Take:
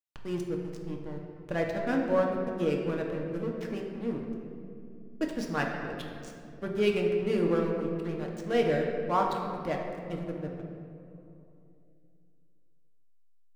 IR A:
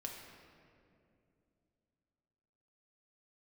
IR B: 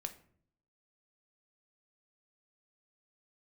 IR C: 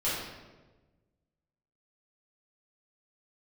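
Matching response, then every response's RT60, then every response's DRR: A; 2.6, 0.60, 1.3 seconds; 0.0, 6.5, −11.0 decibels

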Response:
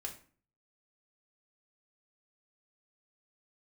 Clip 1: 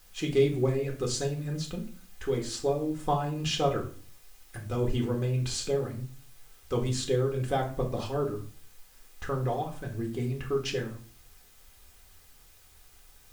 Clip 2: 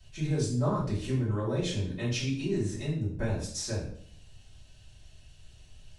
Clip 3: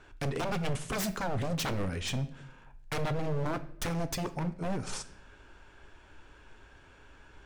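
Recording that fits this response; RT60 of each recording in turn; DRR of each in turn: 1; 0.45, 0.60, 0.75 seconds; 0.5, −8.5, 10.5 decibels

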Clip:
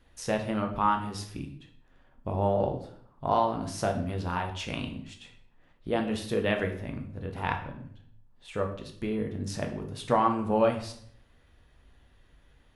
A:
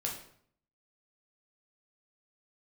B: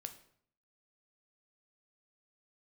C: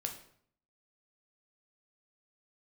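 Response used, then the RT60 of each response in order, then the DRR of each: C; 0.60, 0.60, 0.60 seconds; −1.5, 7.0, 3.0 decibels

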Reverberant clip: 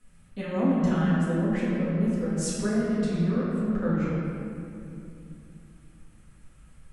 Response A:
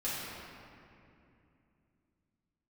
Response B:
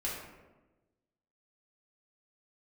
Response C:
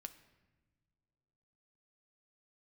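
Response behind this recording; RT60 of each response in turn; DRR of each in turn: A; 2.7 s, 1.2 s, non-exponential decay; −10.0, −6.5, 7.5 decibels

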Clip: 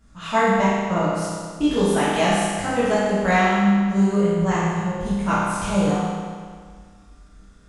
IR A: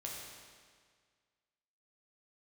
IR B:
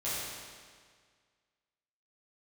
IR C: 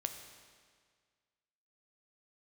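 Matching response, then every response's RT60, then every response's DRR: B; 1.8, 1.8, 1.8 seconds; −3.0, −11.5, 6.0 decibels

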